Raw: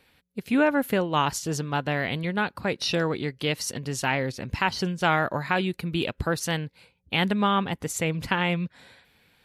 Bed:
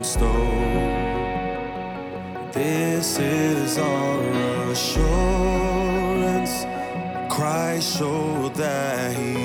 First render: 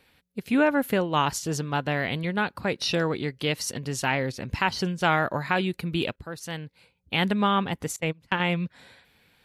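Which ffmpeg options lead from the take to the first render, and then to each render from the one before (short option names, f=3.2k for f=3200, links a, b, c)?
-filter_complex "[0:a]asettb=1/sr,asplit=3[a][b][c];[a]atrim=end=7.964[d];[b]atrim=start=7.96:end=8.4,asetpts=PTS-STARTPTS,afade=t=in:d=0.004:c=qsin,afade=t=out:st=0.436:d=0.004:c=qsin,agate=range=-25dB:threshold=-26dB:ratio=16:release=100:detection=peak[e];[c]atrim=start=8.396[f];[d][e]acrossfade=d=0.004:c1=hsin:c2=qsin[g];[g][f]acrossfade=d=0.004:c1=qsin:c2=hsin,asplit=2[h][i];[h]atrim=end=6.16,asetpts=PTS-STARTPTS,afade=t=out:st=6.156:d=0.004:c=hsin:silence=0.16788[j];[i]atrim=start=6.16,asetpts=PTS-STARTPTS,afade=t=in:d=1.1:silence=0.16788[k];[j][k]concat=n=2:v=0:a=1"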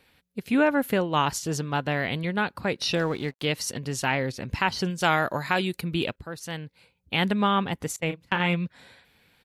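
-filter_complex "[0:a]asplit=3[a][b][c];[a]afade=t=out:st=2.95:d=0.02[d];[b]aeval=exprs='sgn(val(0))*max(abs(val(0))-0.00447,0)':c=same,afade=t=in:st=2.95:d=0.02,afade=t=out:st=3.44:d=0.02[e];[c]afade=t=in:st=3.44:d=0.02[f];[d][e][f]amix=inputs=3:normalize=0,asettb=1/sr,asplit=3[g][h][i];[g]atrim=end=4.904[j];[h]atrim=start=4.9:end=5.81,asetpts=PTS-STARTPTS,afade=t=in:d=0.004:c=qsin,afade=t=out:st=0.906:d=0.004:c=qsin,bass=f=250:g=-2,treble=f=4k:g=8[k];[i]atrim=start=5.806[l];[j][k]acrossfade=d=0.004:c1=hsin:c2=qsin[m];[m][l]acrossfade=d=0.004:c1=qsin:c2=hsin,asplit=3[n][o][p];[n]afade=t=out:st=8.08:d=0.02[q];[o]asplit=2[r][s];[s]adelay=35,volume=-8.5dB[t];[r][t]amix=inputs=2:normalize=0,afade=t=in:st=8.08:d=0.02,afade=t=out:st=8.54:d=0.02[u];[p]afade=t=in:st=8.54:d=0.02[v];[q][u][v]amix=inputs=3:normalize=0"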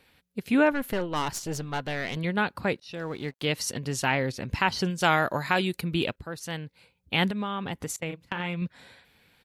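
-filter_complex "[0:a]asettb=1/sr,asplit=3[a][b][c];[a]atrim=end=0.724[d];[b]atrim=start=0.72:end=2.17,asetpts=PTS-STARTPTS,afade=t=in:d=0.004:c=qsin,afade=t=out:st=1.446:d=0.004:c=qsin,aeval=exprs='(tanh(12.6*val(0)+0.6)-tanh(0.6))/12.6':c=same[e];[c]atrim=start=2.166[f];[d][e]acrossfade=d=0.004:c1=hsin:c2=qsin[g];[g][f]acrossfade=d=0.004:c1=qsin:c2=hsin,asettb=1/sr,asplit=3[h][i][j];[h]atrim=end=7.284[k];[i]atrim=start=7.28:end=8.62,asetpts=PTS-STARTPTS,afade=t=in:d=0.004:c=qsin,afade=t=out:st=1.336:d=0.004:c=qsin,acompressor=threshold=-27dB:ratio=6:attack=3.2:release=140:knee=1:detection=peak[l];[j]atrim=start=8.616[m];[k][l]acrossfade=d=0.004:c1=hsin:c2=qsin[n];[n][m]acrossfade=d=0.004:c1=qsin:c2=hsin,asplit=2[o][p];[o]atrim=end=2.8,asetpts=PTS-STARTPTS,afade=t=out:st=2.796:d=0.004:c=hsin[q];[p]atrim=start=2.8,asetpts=PTS-STARTPTS,afade=t=in:d=0.95:c=qsin[r];[q][r]concat=n=2:v=0:a=1"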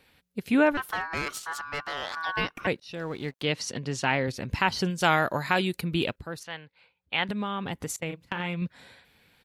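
-filter_complex "[0:a]asettb=1/sr,asplit=3[a][b][c];[a]atrim=end=0.774[d];[b]atrim=start=0.77:end=2.67,asetpts=PTS-STARTPTS,afade=t=in:d=0.004:c=qsin,afade=t=out:st=1.896:d=0.004:c=qsin,aeval=exprs='val(0)*sin(2*PI*1300*n/s)':c=same[e];[c]atrim=start=2.666[f];[d][e]acrossfade=d=0.004:c1=hsin:c2=qsin[g];[g][f]acrossfade=d=0.004:c1=qsin:c2=hsin,asettb=1/sr,asplit=3[h][i][j];[h]atrim=end=3.424[k];[i]atrim=start=3.42:end=4.28,asetpts=PTS-STARTPTS,afade=t=in:d=0.004:c=qsin,afade=t=out:st=0.856:d=0.004:c=qsin,highpass=100,lowpass=6.2k[l];[j]atrim=start=4.276[m];[k][l]acrossfade=d=0.004:c1=hsin:c2=qsin[n];[n][m]acrossfade=d=0.004:c1=qsin:c2=hsin,asettb=1/sr,asplit=3[o][p][q];[o]atrim=end=6.434[r];[p]atrim=start=6.43:end=7.29,asetpts=PTS-STARTPTS,afade=t=in:d=0.004:c=qsin,afade=t=out:st=0.856:d=0.004:c=qsin,acrossover=split=570 4200:gain=0.224 1 0.0708[s][t][u];[s][t][u]amix=inputs=3:normalize=0[v];[q]atrim=start=7.286[w];[r][v]acrossfade=d=0.004:c1=hsin:c2=qsin[x];[x][w]acrossfade=d=0.004:c1=qsin:c2=hsin"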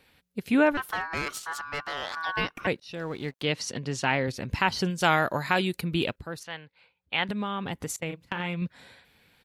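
-af anull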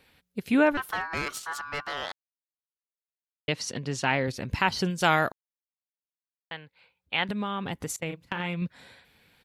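-filter_complex "[0:a]asplit=5[a][b][c][d][e];[a]atrim=end=2.12,asetpts=PTS-STARTPTS,afade=t=out:st=2.116:d=0.004:c=hsin[f];[b]atrim=start=2.12:end=3.48,asetpts=PTS-STARTPTS,volume=0[g];[c]atrim=start=3.48:end=5.32,asetpts=PTS-STARTPTS,afade=t=in:d=0.004:c=hsin,afade=t=out:st=1.836:d=0.004:c=hsin[h];[d]atrim=start=5.32:end=6.51,asetpts=PTS-STARTPTS,volume=0[i];[e]atrim=start=6.51,asetpts=PTS-STARTPTS,afade=t=in:d=0.004:c=hsin[j];[f][g][h][i][j]concat=n=5:v=0:a=1"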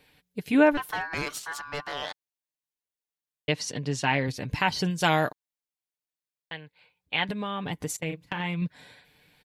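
-af "equalizer=f=1.3k:w=6.7:g=-7,aecho=1:1:6.7:0.4"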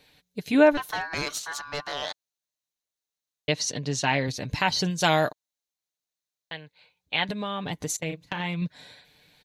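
-af "equalizer=f=630:t=o:w=0.33:g=4,equalizer=f=4k:t=o:w=0.33:g=8,equalizer=f=6.3k:t=o:w=0.33:g=8"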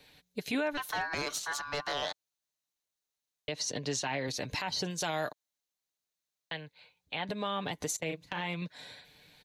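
-filter_complex "[0:a]acrossover=split=310|1100[a][b][c];[a]acompressor=threshold=-42dB:ratio=4[d];[b]acompressor=threshold=-31dB:ratio=4[e];[c]acompressor=threshold=-32dB:ratio=4[f];[d][e][f]amix=inputs=3:normalize=0,alimiter=limit=-23dB:level=0:latency=1:release=71"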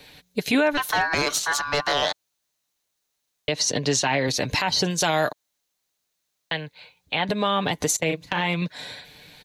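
-af "volume=11.5dB"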